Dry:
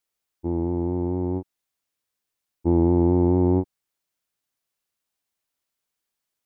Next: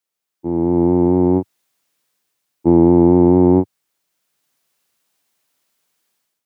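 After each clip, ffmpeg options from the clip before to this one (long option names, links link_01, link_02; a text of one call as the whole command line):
ffmpeg -i in.wav -af "highpass=frequency=110:width=0.5412,highpass=frequency=110:width=1.3066,dynaudnorm=framelen=410:gausssize=3:maxgain=13.5dB" out.wav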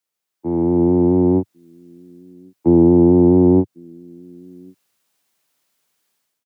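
ffmpeg -i in.wav -filter_complex "[0:a]acrossover=split=140|340|560[link_01][link_02][link_03][link_04];[link_02]aecho=1:1:1100:0.0668[link_05];[link_04]alimiter=level_in=1.5dB:limit=-24dB:level=0:latency=1:release=265,volume=-1.5dB[link_06];[link_01][link_05][link_03][link_06]amix=inputs=4:normalize=0" out.wav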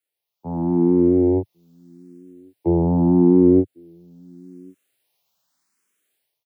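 ffmpeg -i in.wav -filter_complex "[0:a]asplit=2[link_01][link_02];[link_02]afreqshift=0.82[link_03];[link_01][link_03]amix=inputs=2:normalize=1" out.wav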